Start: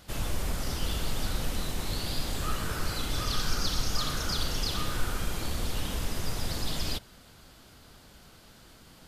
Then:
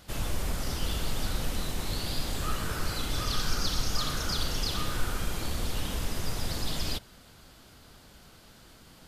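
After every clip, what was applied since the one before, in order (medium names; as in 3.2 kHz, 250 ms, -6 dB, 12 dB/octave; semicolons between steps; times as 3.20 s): no audible change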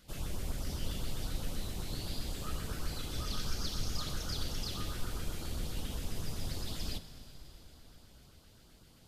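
octave divider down 1 oct, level 0 dB; LFO notch saw up 7.7 Hz 710–2500 Hz; plate-style reverb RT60 4.7 s, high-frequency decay 0.95×, DRR 10.5 dB; trim -8 dB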